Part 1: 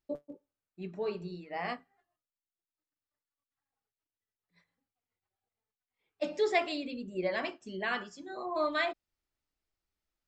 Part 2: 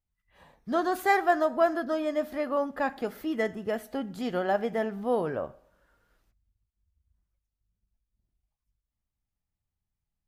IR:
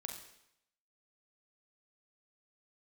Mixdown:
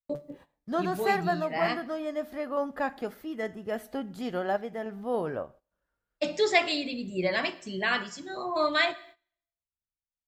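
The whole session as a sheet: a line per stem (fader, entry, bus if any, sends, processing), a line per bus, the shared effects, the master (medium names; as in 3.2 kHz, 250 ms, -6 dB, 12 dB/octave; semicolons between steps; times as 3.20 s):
+1.0 dB, 0.00 s, send -8 dB, peaking EQ 140 Hz +14 dB 0.51 oct; expander -59 dBFS; treble shelf 2 kHz +8.5 dB
0.0 dB, 0.00 s, no send, random-step tremolo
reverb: on, RT60 0.80 s, pre-delay 36 ms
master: gate -51 dBFS, range -16 dB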